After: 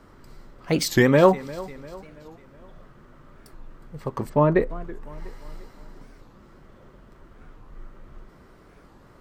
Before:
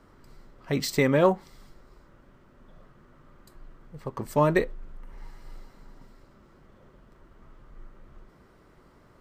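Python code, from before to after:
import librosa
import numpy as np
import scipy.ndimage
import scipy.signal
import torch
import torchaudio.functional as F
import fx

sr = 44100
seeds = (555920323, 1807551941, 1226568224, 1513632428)

p1 = fx.spacing_loss(x, sr, db_at_10k=36, at=(4.28, 4.69), fade=0.02)
p2 = p1 + fx.echo_feedback(p1, sr, ms=348, feedback_pct=49, wet_db=-19.0, dry=0)
p3 = fx.record_warp(p2, sr, rpm=45.0, depth_cents=250.0)
y = F.gain(torch.from_numpy(p3), 5.0).numpy()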